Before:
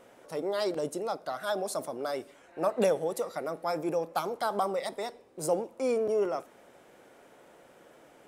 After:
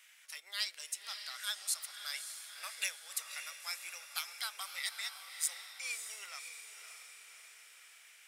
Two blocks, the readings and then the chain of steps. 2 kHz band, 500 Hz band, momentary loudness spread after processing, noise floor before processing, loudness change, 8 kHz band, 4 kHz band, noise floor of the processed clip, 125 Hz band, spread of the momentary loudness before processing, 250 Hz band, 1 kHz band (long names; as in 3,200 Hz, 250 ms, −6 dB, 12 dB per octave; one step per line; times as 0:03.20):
+1.0 dB, −35.5 dB, 16 LU, −58 dBFS, −8.0 dB, +5.5 dB, +5.0 dB, −60 dBFS, below −40 dB, 9 LU, below −40 dB, −17.0 dB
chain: Chebyshev high-pass filter 2,100 Hz, order 3
transient designer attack −1 dB, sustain −5 dB
feedback delay with all-pass diffusion 584 ms, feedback 54%, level −8 dB
level +6 dB